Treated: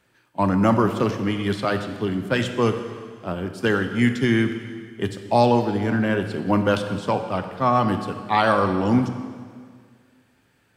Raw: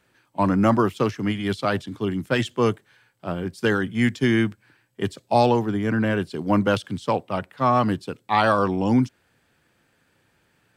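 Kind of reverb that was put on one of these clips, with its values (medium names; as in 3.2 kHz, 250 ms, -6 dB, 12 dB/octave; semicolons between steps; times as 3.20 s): plate-style reverb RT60 1.9 s, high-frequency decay 0.95×, DRR 7 dB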